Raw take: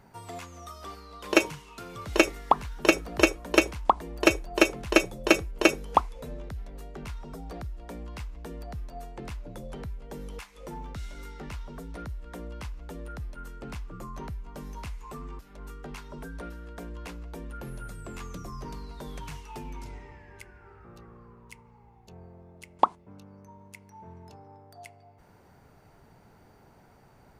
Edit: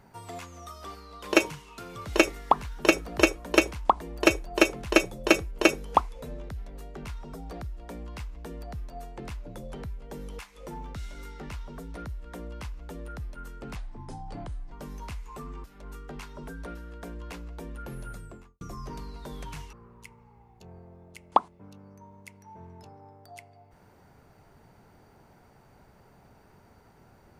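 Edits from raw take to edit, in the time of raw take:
13.76–14.47 s: speed 74%
17.85–18.36 s: studio fade out
19.48–21.20 s: delete

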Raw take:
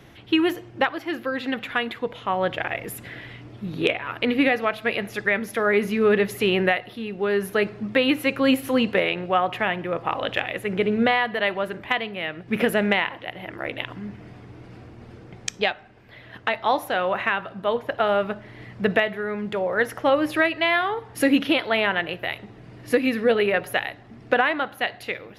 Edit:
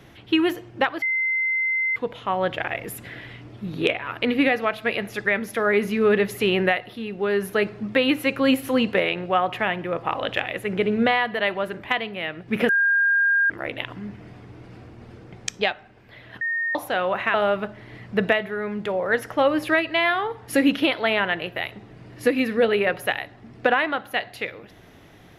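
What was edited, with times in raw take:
1.02–1.96 s: bleep 2.07 kHz -20 dBFS
12.69–13.50 s: bleep 1.61 kHz -16 dBFS
16.41–16.75 s: bleep 1.84 kHz -22 dBFS
17.34–18.01 s: delete

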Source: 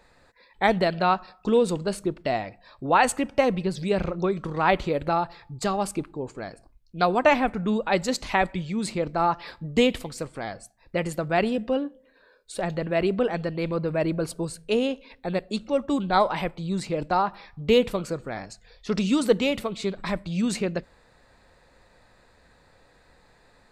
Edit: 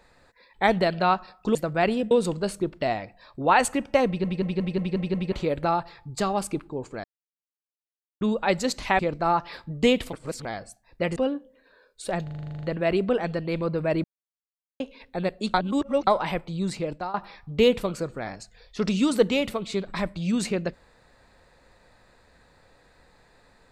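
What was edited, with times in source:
3.50 s: stutter in place 0.18 s, 7 plays
6.48–7.65 s: mute
8.43–8.93 s: delete
10.07–10.39 s: reverse
11.10–11.66 s: move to 1.55 s
12.73 s: stutter 0.04 s, 11 plays
14.14–14.90 s: mute
15.64–16.17 s: reverse
16.86–17.24 s: fade out, to -16 dB

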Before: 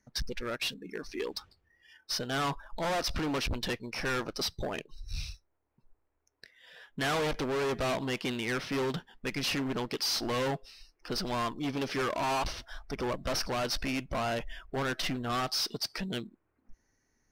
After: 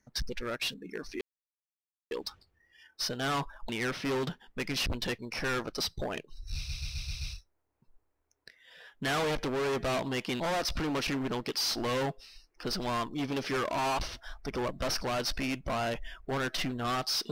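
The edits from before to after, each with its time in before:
1.21 s: insert silence 0.90 s
2.79–3.47 s: swap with 8.36–9.53 s
5.17 s: stutter 0.13 s, 6 plays

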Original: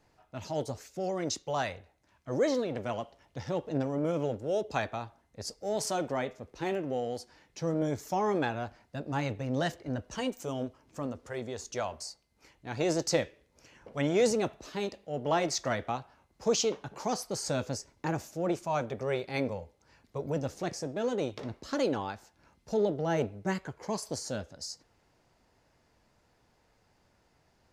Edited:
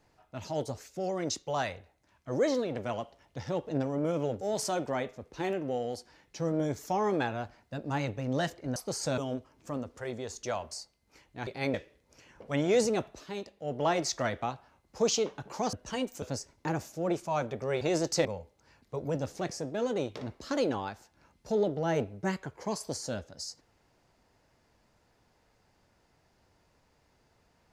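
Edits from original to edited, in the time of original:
4.41–5.63 s: delete
9.98–10.47 s: swap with 17.19–17.61 s
12.76–13.20 s: swap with 19.20–19.47 s
14.65–15.06 s: gain -4.5 dB

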